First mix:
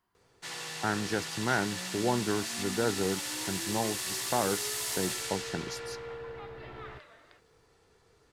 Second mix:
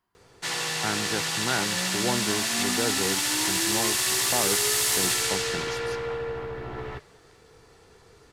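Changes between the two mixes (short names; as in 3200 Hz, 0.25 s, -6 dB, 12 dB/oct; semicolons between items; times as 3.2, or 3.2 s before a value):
first sound +10.5 dB; second sound -7.0 dB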